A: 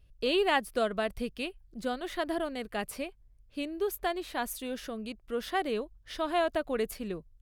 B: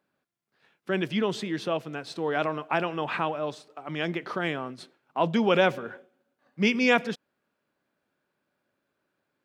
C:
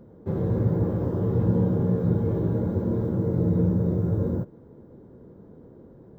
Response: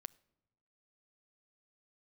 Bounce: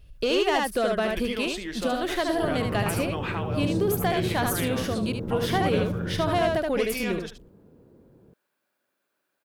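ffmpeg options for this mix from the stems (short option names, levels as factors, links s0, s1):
-filter_complex "[0:a]acontrast=85,asoftclip=type=tanh:threshold=0.178,volume=1.26,asplit=2[s0][s1];[s1]volume=0.473[s2];[1:a]highpass=f=440:p=1,highshelf=f=7300:g=11.5,acompressor=threshold=0.0355:ratio=6,adelay=150,volume=1,asplit=2[s3][s4];[s4]volume=0.282[s5];[2:a]adelay=2150,volume=0.473[s6];[s0][s3]amix=inputs=2:normalize=0,acompressor=threshold=0.0708:ratio=3,volume=1[s7];[s2][s5]amix=inputs=2:normalize=0,aecho=0:1:74:1[s8];[s6][s7][s8]amix=inputs=3:normalize=0"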